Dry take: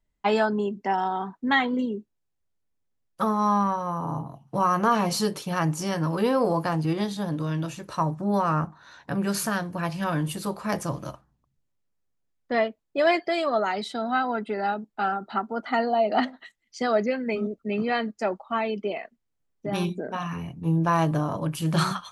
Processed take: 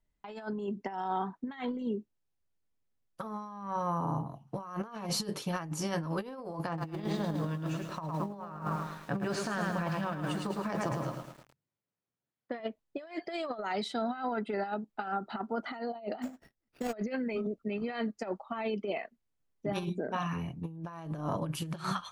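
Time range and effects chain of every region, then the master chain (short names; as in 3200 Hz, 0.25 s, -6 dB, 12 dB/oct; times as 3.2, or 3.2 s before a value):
6.67–12.6 Chebyshev band-pass 110–8700 Hz, order 3 + high shelf 7000 Hz -11.5 dB + lo-fi delay 0.108 s, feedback 55%, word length 8-bit, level -4.5 dB
16.22–16.93 median filter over 41 samples + careless resampling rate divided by 6×, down none, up hold
whole clip: high shelf 7800 Hz -5 dB; negative-ratio compressor -28 dBFS, ratio -0.5; gain -6 dB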